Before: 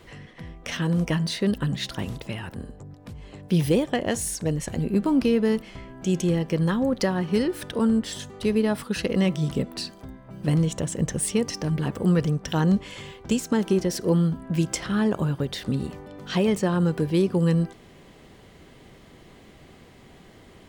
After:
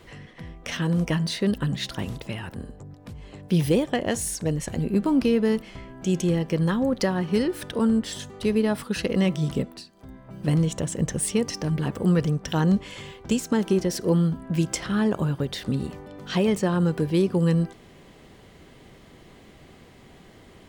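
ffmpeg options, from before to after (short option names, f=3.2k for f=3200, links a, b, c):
-filter_complex "[0:a]asplit=3[a][b][c];[a]atrim=end=9.85,asetpts=PTS-STARTPTS,afade=t=out:st=9.59:d=0.26:silence=0.188365[d];[b]atrim=start=9.85:end=9.92,asetpts=PTS-STARTPTS,volume=-14.5dB[e];[c]atrim=start=9.92,asetpts=PTS-STARTPTS,afade=t=in:d=0.26:silence=0.188365[f];[d][e][f]concat=n=3:v=0:a=1"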